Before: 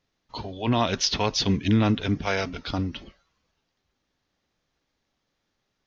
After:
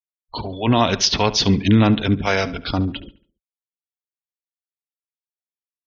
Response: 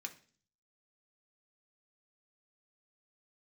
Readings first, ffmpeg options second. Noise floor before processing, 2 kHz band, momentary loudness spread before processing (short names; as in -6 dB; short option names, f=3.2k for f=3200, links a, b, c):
-78 dBFS, +6.5 dB, 15 LU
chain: -filter_complex "[0:a]afftfilt=real='re*gte(hypot(re,im),0.01)':imag='im*gte(hypot(re,im),0.01)':win_size=1024:overlap=0.75,asplit=2[a][b];[b]adelay=71,lowpass=f=4.2k:p=1,volume=-16dB,asplit=2[c][d];[d]adelay=71,lowpass=f=4.2k:p=1,volume=0.43,asplit=2[e][f];[f]adelay=71,lowpass=f=4.2k:p=1,volume=0.43,asplit=2[g][h];[h]adelay=71,lowpass=f=4.2k:p=1,volume=0.43[i];[a][c][e][g][i]amix=inputs=5:normalize=0,volume=6.5dB"